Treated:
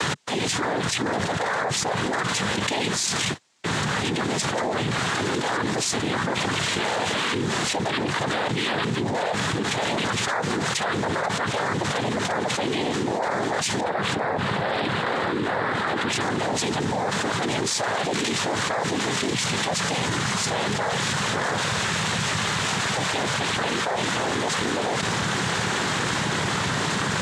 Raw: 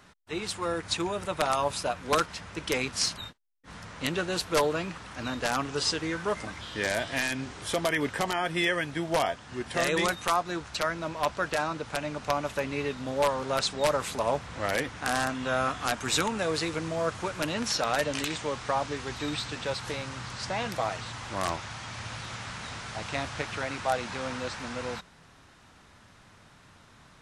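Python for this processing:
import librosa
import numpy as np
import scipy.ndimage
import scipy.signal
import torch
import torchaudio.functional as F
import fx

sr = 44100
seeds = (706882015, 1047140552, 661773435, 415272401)

y = fx.lowpass(x, sr, hz=2500.0, slope=12, at=(13.8, 16.2))
y = fx.noise_vocoder(y, sr, seeds[0], bands=6)
y = fx.env_flatten(y, sr, amount_pct=100)
y = y * 10.0 ** (-4.5 / 20.0)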